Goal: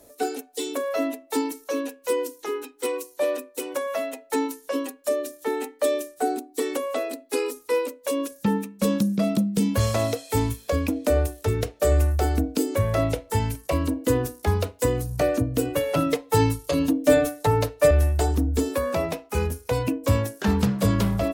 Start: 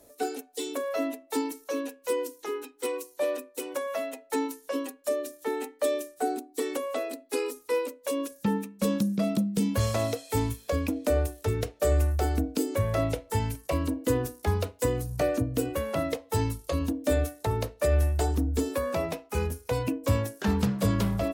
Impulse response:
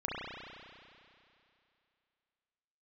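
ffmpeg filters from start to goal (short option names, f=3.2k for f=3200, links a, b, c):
-filter_complex "[0:a]asettb=1/sr,asplit=3[a][b][c];[a]atrim=end=15.754[d];[b]atrim=start=15.75:end=17.91,asetpts=PTS-STARTPTS,afade=t=in:d=0.004:c=qsin,afade=t=out:st=2.156:d=0.004:c=qsin,aecho=1:1:6.8:0.91,atrim=end_sample=95256[e];[c]atrim=start=17.906[f];[d][e]acrossfade=d=0.004:c1=hsin:c2=qsin[g];[g][f]acrossfade=d=0.004:c1=qsin:c2=hsin,volume=4dB"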